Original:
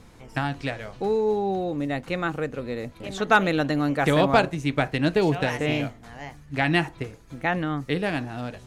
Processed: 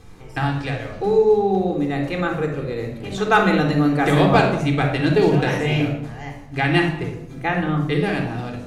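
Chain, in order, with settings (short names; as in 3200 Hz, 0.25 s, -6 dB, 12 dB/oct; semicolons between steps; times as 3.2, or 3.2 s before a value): shoebox room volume 2500 m³, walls furnished, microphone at 3.8 m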